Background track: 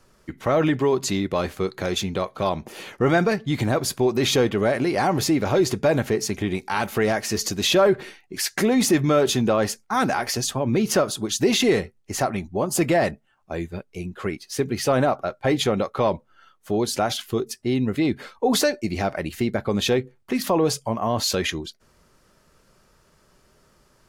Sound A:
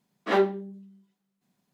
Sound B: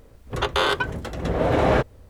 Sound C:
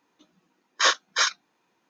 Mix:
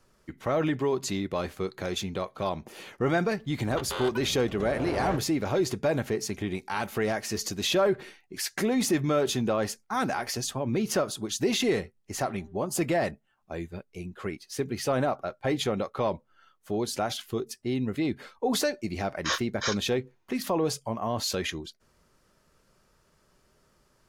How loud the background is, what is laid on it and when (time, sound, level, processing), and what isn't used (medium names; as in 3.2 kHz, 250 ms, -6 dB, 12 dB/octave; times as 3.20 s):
background track -6.5 dB
3.35 s: add B -13.5 dB
11.94 s: add A -17.5 dB, fades 0.10 s + compression 3:1, threshold -31 dBFS
18.45 s: add C -8.5 dB